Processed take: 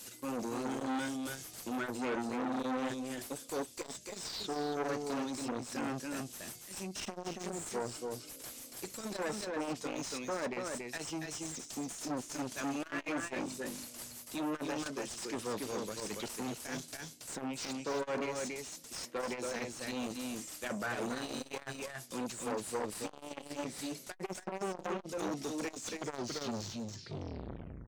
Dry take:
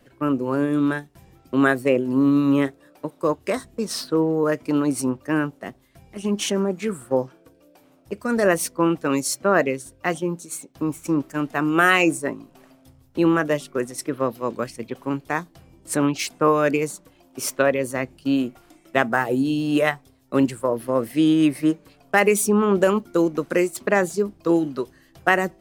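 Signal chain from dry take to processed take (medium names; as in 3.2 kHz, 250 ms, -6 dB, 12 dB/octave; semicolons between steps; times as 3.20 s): tape stop on the ending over 2.05 s; high-pass 59 Hz 12 dB/octave; RIAA curve recording; low-pass that closes with the level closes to 1.8 kHz, closed at -14.5 dBFS; FFT filter 120 Hz 0 dB, 670 Hz -18 dB, 1 kHz -25 dB, 1.7 kHz -18 dB, 6.8 kHz +8 dB; reverse; compression 6:1, threshold -38 dBFS, peak gain reduction 19.5 dB; reverse; overdrive pedal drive 26 dB, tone 1.3 kHz, clips at -23 dBFS; on a send: delay 258 ms -4.5 dB; on the sum: speed mistake 48 kHz file played as 44.1 kHz; transformer saturation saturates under 940 Hz; trim +1 dB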